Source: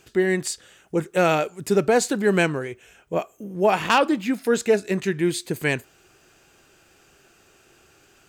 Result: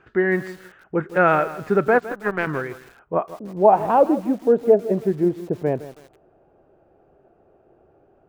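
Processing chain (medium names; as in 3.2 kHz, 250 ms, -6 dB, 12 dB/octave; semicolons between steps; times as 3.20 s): 1.98–2.47 s: power-law waveshaper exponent 2; low-pass sweep 1.5 kHz -> 650 Hz, 2.72–4.07 s; bit-crushed delay 161 ms, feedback 35%, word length 6-bit, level -14.5 dB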